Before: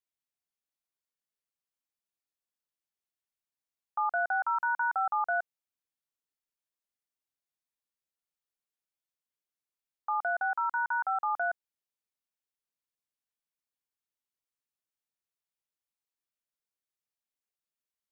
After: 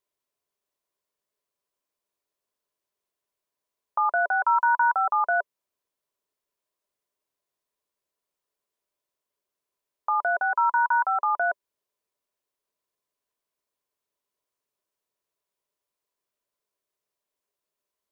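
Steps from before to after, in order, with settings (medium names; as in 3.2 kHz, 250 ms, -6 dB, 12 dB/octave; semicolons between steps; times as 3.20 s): dynamic bell 590 Hz, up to -5 dB, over -46 dBFS, Q 1.7; small resonant body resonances 420/590/990 Hz, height 12 dB, ringing for 30 ms; trim +4.5 dB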